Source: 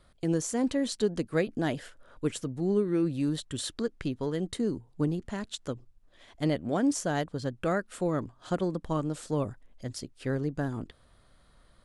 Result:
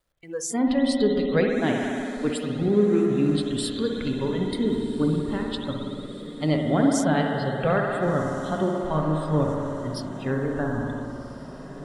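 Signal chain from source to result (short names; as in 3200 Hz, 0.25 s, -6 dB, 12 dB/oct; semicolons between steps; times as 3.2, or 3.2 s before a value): bit-crush 10-bit; spring tank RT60 3.6 s, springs 58 ms, chirp 50 ms, DRR -1 dB; spectral noise reduction 22 dB; diffused feedback echo 1.46 s, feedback 58%, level -15 dB; gain +4.5 dB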